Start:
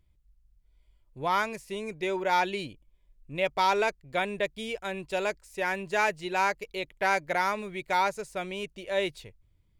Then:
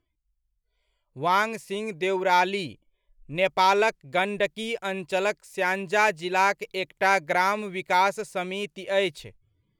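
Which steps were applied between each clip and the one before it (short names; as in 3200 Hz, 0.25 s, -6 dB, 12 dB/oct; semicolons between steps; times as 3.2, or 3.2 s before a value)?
spectral noise reduction 18 dB; gain +4.5 dB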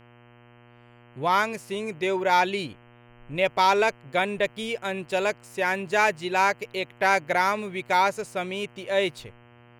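buzz 120 Hz, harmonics 26, -53 dBFS -4 dB/oct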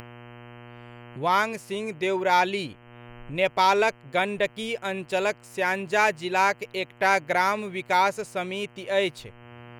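upward compressor, threshold -34 dBFS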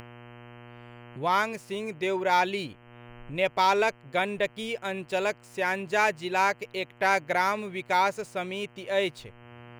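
median filter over 3 samples; gain -2.5 dB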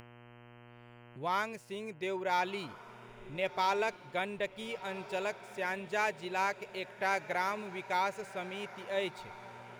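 diffused feedback echo 1.375 s, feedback 42%, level -15 dB; gain -8 dB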